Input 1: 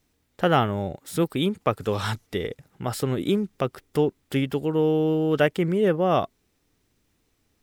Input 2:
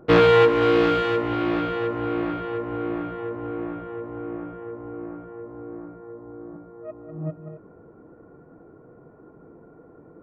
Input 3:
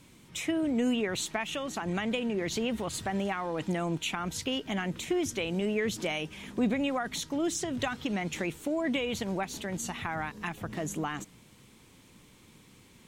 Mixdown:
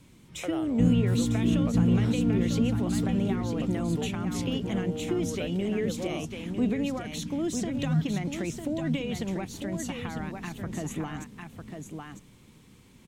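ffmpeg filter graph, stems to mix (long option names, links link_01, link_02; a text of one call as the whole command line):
ffmpeg -i stem1.wav -i stem2.wav -i stem3.wav -filter_complex "[0:a]lowshelf=frequency=320:width_type=q:width=1.5:gain=-14,volume=-16.5dB,asplit=2[link_01][link_02];[1:a]firequalizer=gain_entry='entry(150,0);entry(240,11);entry(340,-23)':delay=0.05:min_phase=1,adelay=700,volume=-1dB,asplit=2[link_03][link_04];[link_04]volume=-6.5dB[link_05];[2:a]volume=-3dB,asplit=2[link_06][link_07];[link_07]volume=-7dB[link_08];[link_02]apad=whole_len=486105[link_09];[link_03][link_09]sidechaincompress=threshold=-37dB:ratio=8:attack=16:release=901[link_10];[link_05][link_08]amix=inputs=2:normalize=0,aecho=0:1:950:1[link_11];[link_01][link_10][link_06][link_11]amix=inputs=4:normalize=0,lowshelf=frequency=310:gain=7.5,acrossover=split=480|3000[link_12][link_13][link_14];[link_13]acompressor=threshold=-38dB:ratio=6[link_15];[link_12][link_15][link_14]amix=inputs=3:normalize=0" out.wav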